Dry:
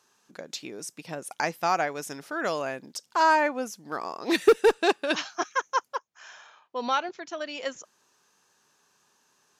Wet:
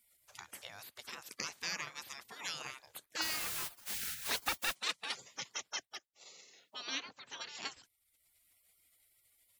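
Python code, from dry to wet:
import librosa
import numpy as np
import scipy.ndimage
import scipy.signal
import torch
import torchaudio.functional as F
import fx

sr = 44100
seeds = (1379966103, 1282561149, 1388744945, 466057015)

y = fx.dmg_noise_colour(x, sr, seeds[0], colour='white', level_db=-39.0, at=(3.21, 4.73), fade=0.02)
y = fx.low_shelf(y, sr, hz=180.0, db=-11.5, at=(5.82, 6.95))
y = fx.spec_gate(y, sr, threshold_db=-20, keep='weak')
y = fx.band_squash(y, sr, depth_pct=40)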